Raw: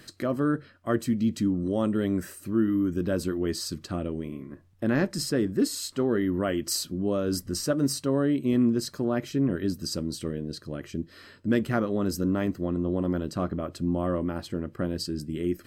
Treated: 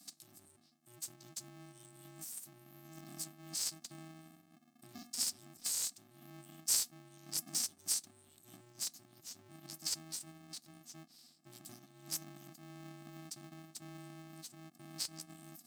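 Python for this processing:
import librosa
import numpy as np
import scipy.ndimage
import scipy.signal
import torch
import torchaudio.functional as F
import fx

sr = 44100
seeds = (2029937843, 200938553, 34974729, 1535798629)

y = scipy.signal.sosfilt(scipy.signal.cheby2(4, 60, [190.0, 1800.0], 'bandstop', fs=sr, output='sos'), x)
y = y * np.sign(np.sin(2.0 * np.pi * 240.0 * np.arange(len(y)) / sr))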